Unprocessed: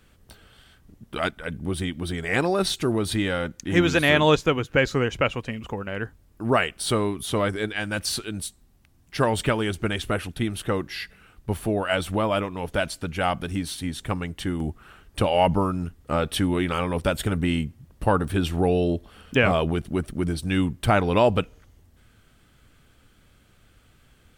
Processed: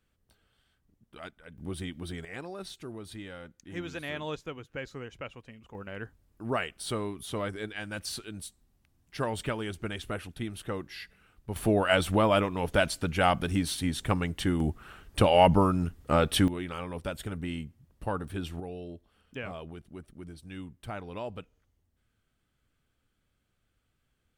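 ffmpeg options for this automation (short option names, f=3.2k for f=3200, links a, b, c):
-af "asetnsamples=n=441:p=0,asendcmd='1.58 volume volume -9dB;2.25 volume volume -18dB;5.75 volume volume -9.5dB;11.56 volume volume 0dB;16.48 volume volume -11.5dB;18.6 volume volume -19dB',volume=-18dB"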